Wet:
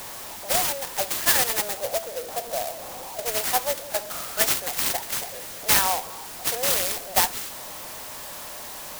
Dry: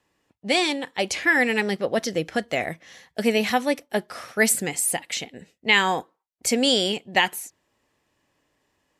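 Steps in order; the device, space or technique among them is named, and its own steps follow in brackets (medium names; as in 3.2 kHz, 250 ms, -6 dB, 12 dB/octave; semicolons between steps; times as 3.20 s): 1.77–3.26 s: inverse Chebyshev low-pass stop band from 2 kHz, stop band 40 dB; steep high-pass 580 Hz 36 dB/octave; early CD player with a faulty converter (jump at every zero crossing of -30 dBFS; sampling jitter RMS 0.14 ms); trim -1 dB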